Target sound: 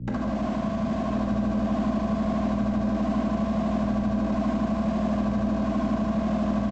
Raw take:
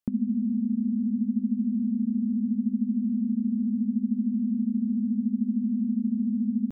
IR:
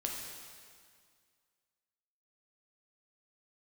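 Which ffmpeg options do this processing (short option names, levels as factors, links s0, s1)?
-filter_complex "[0:a]afwtdn=0.0178,aeval=exprs='0.15*(cos(1*acos(clip(val(0)/0.15,-1,1)))-cos(1*PI/2))+0.00531*(cos(7*acos(clip(val(0)/0.15,-1,1)))-cos(7*PI/2))':c=same,acompressor=threshold=0.0562:ratio=12,aresample=16000,acrusher=bits=2:mode=log:mix=0:aa=0.000001,aresample=44100,aeval=exprs='val(0)+0.0112*(sin(2*PI*60*n/s)+sin(2*PI*2*60*n/s)/2+sin(2*PI*3*60*n/s)/3+sin(2*PI*4*60*n/s)/4+sin(2*PI*5*60*n/s)/5)':c=same,aemphasis=mode=reproduction:type=75kf,acrossover=split=130|170[s0][s1][s2];[s1]aeval=exprs='0.0335*sin(PI/2*7.08*val(0)/0.0335)':c=same[s3];[s0][s3][s2]amix=inputs=3:normalize=0,asplit=2[s4][s5];[s5]adelay=1050,volume=0.398,highshelf=f=4000:g=-23.6[s6];[s4][s6]amix=inputs=2:normalize=0[s7];[1:a]atrim=start_sample=2205[s8];[s7][s8]afir=irnorm=-1:irlink=0"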